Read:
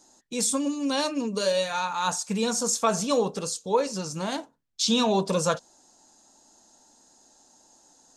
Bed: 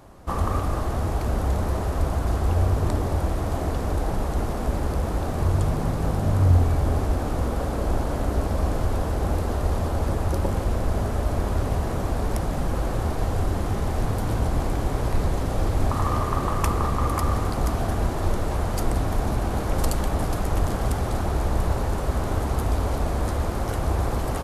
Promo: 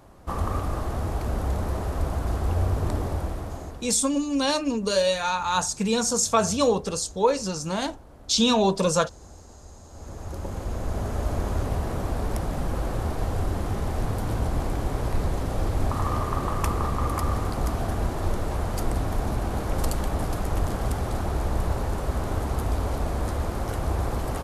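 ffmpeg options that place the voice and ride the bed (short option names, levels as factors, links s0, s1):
-filter_complex "[0:a]adelay=3500,volume=1.33[s0];[1:a]volume=7.5,afade=t=out:st=3.03:d=0.92:silence=0.1,afade=t=in:st=9.88:d=1.38:silence=0.0944061[s1];[s0][s1]amix=inputs=2:normalize=0"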